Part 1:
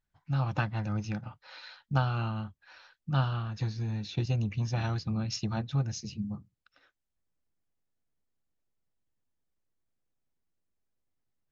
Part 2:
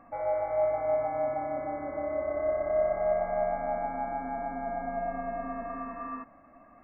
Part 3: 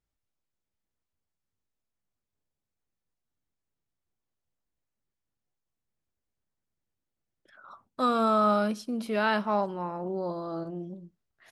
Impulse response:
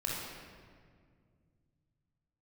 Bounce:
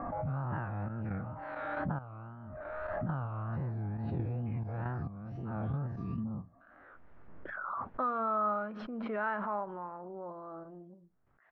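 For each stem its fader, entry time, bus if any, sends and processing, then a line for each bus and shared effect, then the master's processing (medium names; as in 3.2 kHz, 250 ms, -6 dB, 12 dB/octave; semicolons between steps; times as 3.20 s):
-4.5 dB, 0.00 s, bus A, no send, every event in the spectrogram widened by 120 ms; treble shelf 5.9 kHz +6 dB; wow and flutter 140 cents
-8.5 dB, 0.00 s, bus A, no send, one-sided wavefolder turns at -27.5 dBFS; compression, threshold -35 dBFS, peak gain reduction 11 dB; auto duck -7 dB, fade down 0.30 s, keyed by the first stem
-7.5 dB, 0.00 s, no bus, no send, tilt shelf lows -8 dB, about 880 Hz
bus A: 0.0 dB, trance gate "xxxx.xx.x...x." 68 bpm -12 dB; compression 10:1, threshold -32 dBFS, peak gain reduction 9.5 dB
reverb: none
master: low-pass 1.5 kHz 24 dB/octave; swell ahead of each attack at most 22 dB/s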